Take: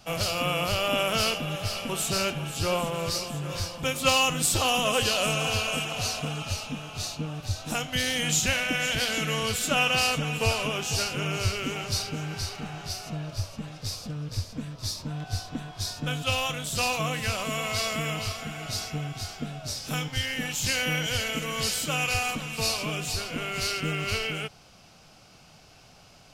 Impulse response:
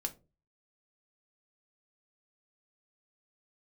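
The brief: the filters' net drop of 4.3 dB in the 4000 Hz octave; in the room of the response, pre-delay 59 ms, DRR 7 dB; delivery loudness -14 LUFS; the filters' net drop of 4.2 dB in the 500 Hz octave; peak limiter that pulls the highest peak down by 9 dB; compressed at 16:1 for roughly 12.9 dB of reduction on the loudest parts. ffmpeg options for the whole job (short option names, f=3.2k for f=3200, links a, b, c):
-filter_complex "[0:a]equalizer=f=500:t=o:g=-5,equalizer=f=4k:t=o:g=-6.5,acompressor=threshold=-33dB:ratio=16,alimiter=level_in=8dB:limit=-24dB:level=0:latency=1,volume=-8dB,asplit=2[a][b];[1:a]atrim=start_sample=2205,adelay=59[c];[b][c]afir=irnorm=-1:irlink=0,volume=-7dB[d];[a][d]amix=inputs=2:normalize=0,volume=25.5dB"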